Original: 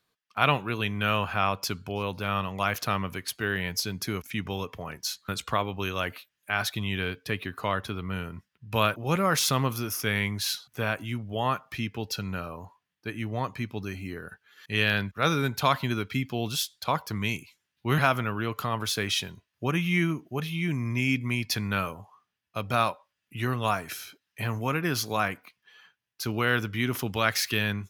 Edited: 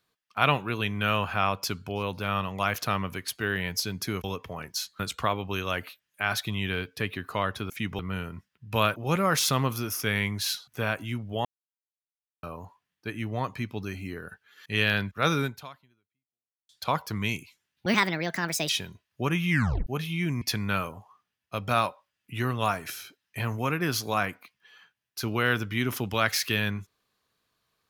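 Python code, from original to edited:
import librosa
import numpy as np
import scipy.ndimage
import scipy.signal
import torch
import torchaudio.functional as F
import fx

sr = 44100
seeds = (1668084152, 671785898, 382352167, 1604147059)

y = fx.edit(x, sr, fx.move(start_s=4.24, length_s=0.29, to_s=7.99),
    fx.silence(start_s=11.45, length_s=0.98),
    fx.fade_out_span(start_s=15.42, length_s=1.27, curve='exp'),
    fx.speed_span(start_s=17.86, length_s=1.26, speed=1.51),
    fx.tape_stop(start_s=19.93, length_s=0.36),
    fx.cut(start_s=20.84, length_s=0.6), tone=tone)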